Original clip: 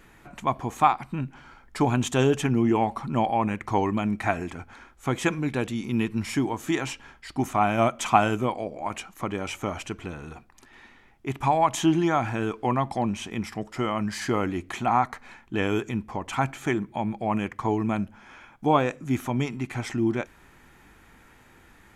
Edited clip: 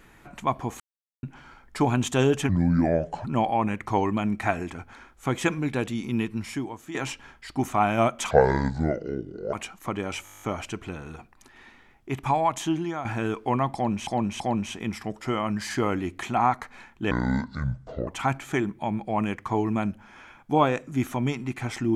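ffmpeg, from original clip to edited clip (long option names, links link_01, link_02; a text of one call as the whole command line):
ffmpeg -i in.wav -filter_complex "[0:a]asplit=22[link_01][link_02][link_03][link_04][link_05][link_06][link_07][link_08][link_09][link_10][link_11][link_12][link_13][link_14][link_15][link_16][link_17][link_18][link_19][link_20][link_21][link_22];[link_01]atrim=end=0.8,asetpts=PTS-STARTPTS,afade=type=out:start_time=0.796:duration=0.004:curve=hsin[link_23];[link_02]atrim=start=0.8:end=1.23,asetpts=PTS-STARTPTS,volume=0[link_24];[link_03]atrim=start=1.23:end=2.494,asetpts=PTS-STARTPTS,afade=type=in:duration=0.004:curve=hsin[link_25];[link_04]atrim=start=2.49:end=3.05,asetpts=PTS-STARTPTS,asetrate=32634,aresample=44100[link_26];[link_05]atrim=start=3.046:end=6.75,asetpts=PTS-STARTPTS,afade=type=out:start_time=2.784:duration=0.92:silence=0.211349[link_27];[link_06]atrim=start=6.75:end=8.114,asetpts=PTS-STARTPTS,afade=type=in:duration=0.004:curve=hsin:silence=0.211349[link_28];[link_07]atrim=start=8.11:end=8.88,asetpts=PTS-STARTPTS,asetrate=27783,aresample=44100[link_29];[link_08]atrim=start=8.876:end=9.612[link_30];[link_09]atrim=start=9.588:end=9.612[link_31];[link_10]atrim=start=9.588:end=9.612[link_32];[link_11]atrim=start=9.588:end=9.612[link_33];[link_12]atrim=start=9.588:end=9.612[link_34];[link_13]atrim=start=9.588:end=9.612[link_35];[link_14]atrim=start=9.588:end=9.612[link_36];[link_15]atrim=start=9.588:end=9.612[link_37];[link_16]atrim=start=9.588:end=9.612[link_38];[link_17]atrim=start=9.588:end=12.22,asetpts=PTS-STARTPTS,afade=type=out:start_time=1.752:duration=0.88:silence=0.298538[link_39];[link_18]atrim=start=12.22:end=13.242,asetpts=PTS-STARTPTS,afade=type=in:duration=0.004:curve=hsin:silence=0.298538[link_40];[link_19]atrim=start=12.908:end=13.242[link_41];[link_20]atrim=start=12.908:end=15.624[link_42];[link_21]atrim=start=15.62:end=16.21,asetpts=PTS-STARTPTS,asetrate=26901,aresample=44100,atrim=end_sample=42654,asetpts=PTS-STARTPTS[link_43];[link_22]atrim=start=16.206[link_44];[link_23][link_24][link_25]concat=n=3:v=0:a=1[link_45];[link_45][link_26]acrossfade=duration=0.004:curve1=hsin:curve2=hsin[link_46];[link_27][link_28]concat=n=2:v=0:a=1[link_47];[link_46][link_47]acrossfade=duration=0.004:curve1=hsin:curve2=hsin[link_48];[link_48][link_29]acrossfade=duration=0.004:curve1=hsin:curve2=hsin[link_49];[link_49][link_30]acrossfade=duration=0.004:curve1=hsin:curve2=hsin[link_50];[link_50][link_31]acrossfade=duration=0.004:curve1=hsin:curve2=hsin[link_51];[link_51][link_32]acrossfade=duration=0.004:curve1=hsin:curve2=hsin[link_52];[link_52][link_33]acrossfade=duration=0.004:curve1=hsin:curve2=hsin[link_53];[link_53][link_34]acrossfade=duration=0.004:curve1=hsin:curve2=hsin[link_54];[link_54][link_35]acrossfade=duration=0.004:curve1=hsin:curve2=hsin[link_55];[link_55][link_36]acrossfade=duration=0.004:curve1=hsin:curve2=hsin[link_56];[link_56][link_37]acrossfade=duration=0.004:curve1=hsin:curve2=hsin[link_57];[link_57][link_38]acrossfade=duration=0.004:curve1=hsin:curve2=hsin[link_58];[link_39][link_40]concat=n=2:v=0:a=1[link_59];[link_58][link_59]acrossfade=duration=0.004:curve1=hsin:curve2=hsin[link_60];[link_60][link_41]acrossfade=duration=0.004:curve1=hsin:curve2=hsin[link_61];[link_61][link_42]acrossfade=duration=0.004:curve1=hsin:curve2=hsin[link_62];[link_62][link_43]acrossfade=duration=0.004:curve1=hsin:curve2=hsin[link_63];[link_63][link_44]acrossfade=duration=0.004:curve1=hsin:curve2=hsin" out.wav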